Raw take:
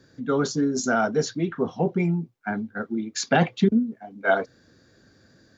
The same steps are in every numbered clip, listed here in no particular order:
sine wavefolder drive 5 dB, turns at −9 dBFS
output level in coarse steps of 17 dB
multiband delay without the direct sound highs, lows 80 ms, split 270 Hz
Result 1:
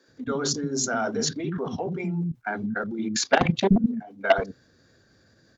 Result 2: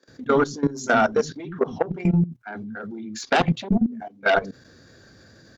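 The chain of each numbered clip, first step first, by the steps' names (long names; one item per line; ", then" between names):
output level in coarse steps, then sine wavefolder, then multiband delay without the direct sound
sine wavefolder, then multiband delay without the direct sound, then output level in coarse steps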